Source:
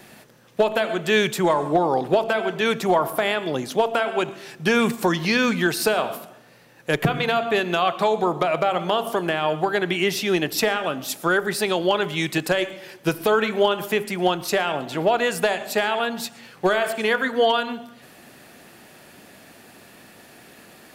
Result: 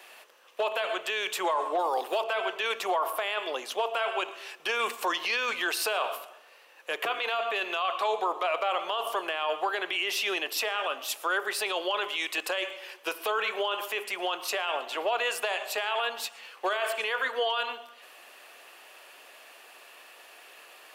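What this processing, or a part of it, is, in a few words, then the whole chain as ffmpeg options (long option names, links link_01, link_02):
laptop speaker: -filter_complex "[0:a]highpass=frequency=450:width=0.5412,highpass=frequency=450:width=1.3066,equalizer=frequency=1100:width_type=o:width=0.4:gain=7,equalizer=frequency=2800:width_type=o:width=0.51:gain=8.5,alimiter=limit=-14.5dB:level=0:latency=1:release=11,asettb=1/sr,asplit=3[link_01][link_02][link_03];[link_01]atrim=end=1.794[link_04];[link_02]atrim=start=1.79:end=2.21,asetpts=PTS-STARTPTS,afade=type=in:duration=0.004:curve=qsin,afade=type=out:start_time=0.416:duration=0.004:curve=qsin,aemphasis=mode=production:type=50fm[link_05];[link_03]atrim=start=2.206[link_06];[link_04][link_05]acrossfade=duration=0.004:curve1=hsin:curve2=qsin[link_07];[link_07][link_06]acrossfade=duration=0.004:curve1=qsin:curve2=hsin,volume=-5dB"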